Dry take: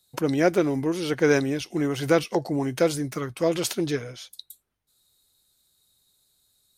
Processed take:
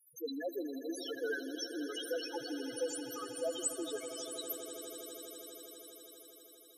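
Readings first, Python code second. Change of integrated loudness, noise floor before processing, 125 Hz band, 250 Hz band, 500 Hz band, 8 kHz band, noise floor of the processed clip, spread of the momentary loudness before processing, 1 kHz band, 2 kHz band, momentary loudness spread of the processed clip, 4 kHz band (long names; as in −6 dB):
−15.0 dB, −71 dBFS, −37.0 dB, −16.5 dB, −14.5 dB, −4.5 dB, −59 dBFS, 10 LU, −16.5 dB, −13.5 dB, 14 LU, −7.5 dB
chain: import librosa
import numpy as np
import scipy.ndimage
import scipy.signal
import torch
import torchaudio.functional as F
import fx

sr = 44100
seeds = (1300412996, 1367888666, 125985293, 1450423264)

p1 = np.diff(x, prepend=0.0)
p2 = fx.over_compress(p1, sr, threshold_db=-42.0, ratio=-1.0)
p3 = p1 + (p2 * librosa.db_to_amplitude(-1.0))
p4 = fx.spec_topn(p3, sr, count=2)
p5 = fx.echo_swell(p4, sr, ms=81, loudest=8, wet_db=-15.5)
y = p5 * librosa.db_to_amplitude(7.0)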